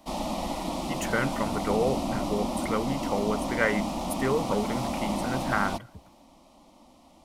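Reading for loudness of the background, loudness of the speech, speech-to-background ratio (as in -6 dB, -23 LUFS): -31.5 LUFS, -30.5 LUFS, 1.0 dB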